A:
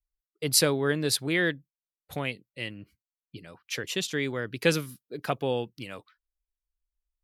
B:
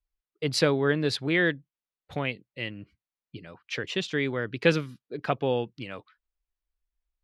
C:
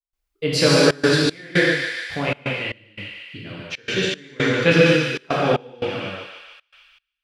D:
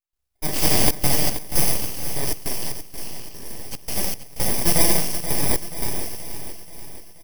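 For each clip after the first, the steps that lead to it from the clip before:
low-pass filter 3,600 Hz 12 dB per octave; level +2 dB
on a send: feedback echo with a high-pass in the loop 148 ms, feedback 74%, high-pass 990 Hz, level −5.5 dB; on the sum: reverb whose tail is shaped and stops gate 290 ms flat, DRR −7 dB; gate pattern ".xxxxxx.xx." 116 BPM −24 dB; level +2 dB
samples in bit-reversed order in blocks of 32 samples; full-wave rectification; repeating echo 480 ms, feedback 53%, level −11 dB

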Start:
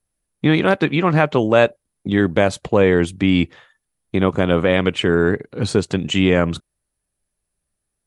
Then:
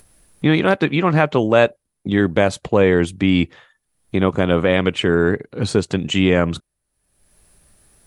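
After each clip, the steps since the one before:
upward compression, threshold −34 dBFS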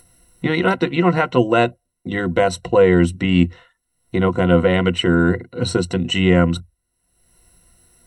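EQ curve with evenly spaced ripples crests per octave 2, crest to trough 16 dB
level −2.5 dB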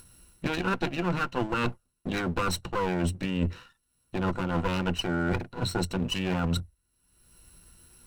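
lower of the sound and its delayed copy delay 0.73 ms
reversed playback
downward compressor 6 to 1, threshold −25 dBFS, peak gain reduction 14.5 dB
reversed playback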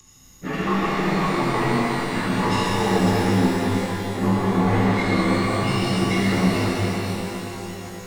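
partials spread apart or drawn together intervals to 87%
reverb with rising layers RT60 3.9 s, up +12 semitones, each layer −8 dB, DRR −9 dB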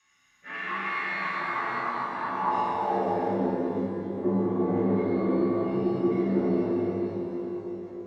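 band-pass filter sweep 1,900 Hz → 390 Hz, 0:01.20–0:03.91
rectangular room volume 350 cubic metres, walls furnished, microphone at 5.5 metres
level −8 dB

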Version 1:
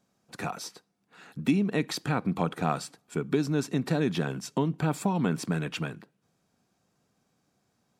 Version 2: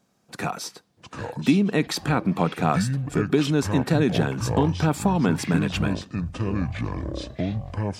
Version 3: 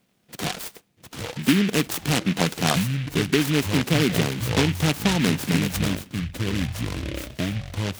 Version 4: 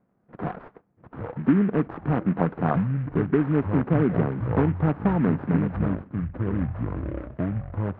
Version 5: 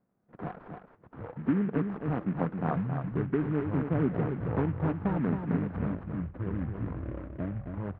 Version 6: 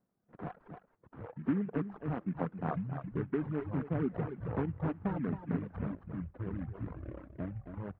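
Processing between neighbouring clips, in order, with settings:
delay with pitch and tempo change per echo 543 ms, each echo −7 semitones, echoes 3, each echo −6 dB; level +5.5 dB
short delay modulated by noise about 2,300 Hz, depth 0.2 ms
low-pass filter 1,400 Hz 24 dB per octave
single-tap delay 270 ms −6.5 dB; level −7.5 dB
reverb reduction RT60 1 s; level −4 dB

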